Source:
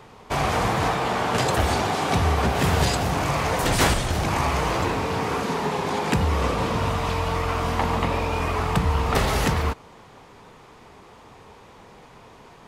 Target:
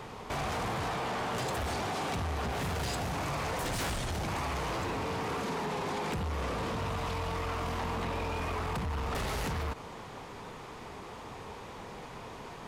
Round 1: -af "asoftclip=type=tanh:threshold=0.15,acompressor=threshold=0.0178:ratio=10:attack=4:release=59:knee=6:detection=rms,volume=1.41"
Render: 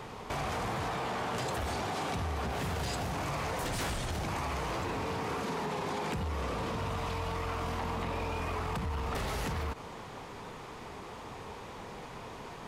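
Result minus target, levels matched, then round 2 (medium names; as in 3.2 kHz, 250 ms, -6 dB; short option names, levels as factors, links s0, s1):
saturation: distortion -6 dB
-af "asoftclip=type=tanh:threshold=0.0708,acompressor=threshold=0.0178:ratio=10:attack=4:release=59:knee=6:detection=rms,volume=1.41"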